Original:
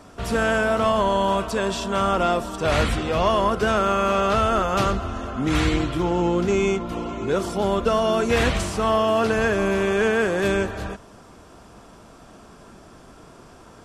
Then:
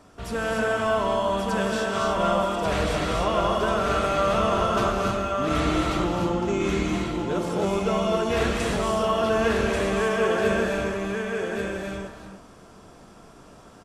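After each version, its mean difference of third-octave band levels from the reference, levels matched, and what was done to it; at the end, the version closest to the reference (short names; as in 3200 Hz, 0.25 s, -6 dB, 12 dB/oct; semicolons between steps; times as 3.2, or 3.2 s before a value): 4.5 dB: on a send: echo 1.137 s -4 dB; on the sum: non-linear reverb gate 0.32 s rising, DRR 0.5 dB; gain -6.5 dB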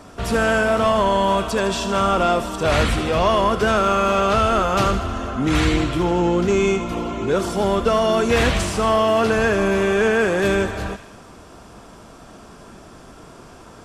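1.0 dB: in parallel at -5 dB: soft clip -19 dBFS, distortion -11 dB; on the sum: thin delay 78 ms, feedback 60%, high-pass 1700 Hz, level -9.5 dB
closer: second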